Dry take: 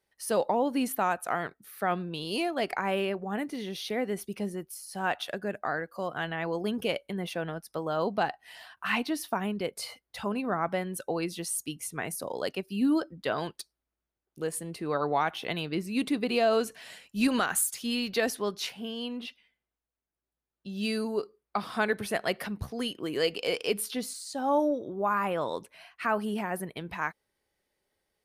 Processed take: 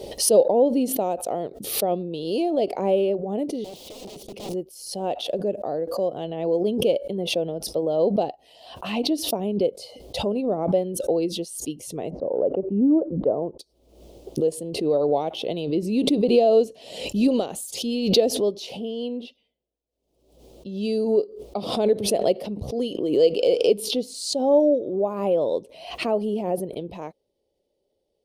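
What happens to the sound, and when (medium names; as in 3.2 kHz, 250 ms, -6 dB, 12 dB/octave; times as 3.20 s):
3.64–4.54 s: integer overflow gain 35.5 dB
12.10–13.59 s: low-pass 1.2 kHz 24 dB/octave
whole clip: FFT filter 170 Hz 0 dB, 550 Hz +10 dB, 1.6 kHz -26 dB, 3 kHz -4 dB, 4.7 kHz -4 dB, 13 kHz -12 dB; swell ahead of each attack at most 69 dB/s; trim +2 dB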